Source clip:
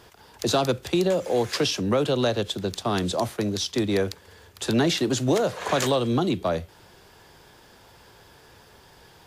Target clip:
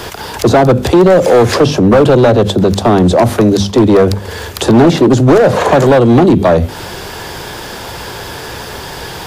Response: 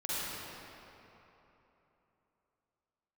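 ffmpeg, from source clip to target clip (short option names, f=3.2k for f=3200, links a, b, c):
-filter_complex "[0:a]bandreject=f=50:t=h:w=6,bandreject=f=100:t=h:w=6,bandreject=f=150:t=h:w=6,bandreject=f=200:t=h:w=6,bandreject=f=250:t=h:w=6,acrossover=split=520|1000[a][b][c];[c]acompressor=threshold=-45dB:ratio=10[d];[a][b][d]amix=inputs=3:normalize=0,volume=22dB,asoftclip=hard,volume=-22dB,alimiter=level_in=29dB:limit=-1dB:release=50:level=0:latency=1,volume=-2dB"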